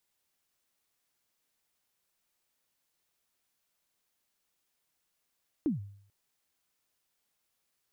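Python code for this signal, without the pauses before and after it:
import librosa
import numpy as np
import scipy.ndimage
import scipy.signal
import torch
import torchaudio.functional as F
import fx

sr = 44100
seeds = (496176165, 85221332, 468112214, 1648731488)

y = fx.drum_kick(sr, seeds[0], length_s=0.44, level_db=-23, start_hz=340.0, end_hz=100.0, sweep_ms=137.0, decay_s=0.61, click=False)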